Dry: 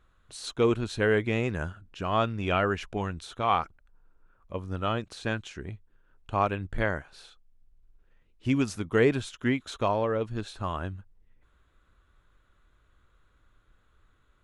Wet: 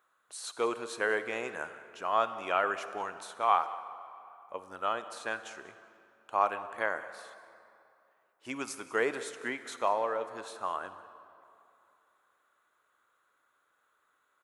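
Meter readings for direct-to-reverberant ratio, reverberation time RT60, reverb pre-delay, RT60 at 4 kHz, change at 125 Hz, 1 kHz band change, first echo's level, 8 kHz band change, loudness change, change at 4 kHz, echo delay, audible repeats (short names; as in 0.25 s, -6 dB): 11.5 dB, 2.7 s, 37 ms, 1.8 s, -27.5 dB, 0.0 dB, -19.5 dB, +0.5 dB, -4.0 dB, -6.0 dB, 0.191 s, 1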